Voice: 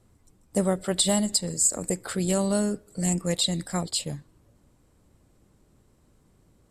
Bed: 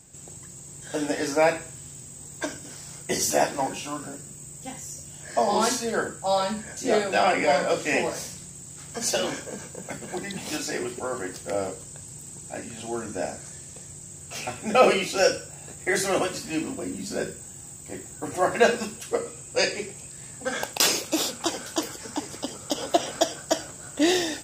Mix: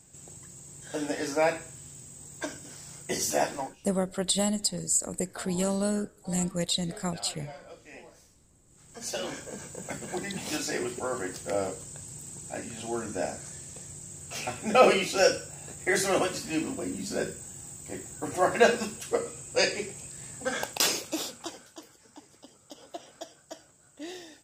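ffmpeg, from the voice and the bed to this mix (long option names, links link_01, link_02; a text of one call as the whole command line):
ffmpeg -i stem1.wav -i stem2.wav -filter_complex "[0:a]adelay=3300,volume=-3.5dB[link_01];[1:a]volume=18dB,afade=type=out:start_time=3.54:duration=0.22:silence=0.105925,afade=type=in:start_time=8.66:duration=1.22:silence=0.0749894,afade=type=out:start_time=20.44:duration=1.3:silence=0.125893[link_02];[link_01][link_02]amix=inputs=2:normalize=0" out.wav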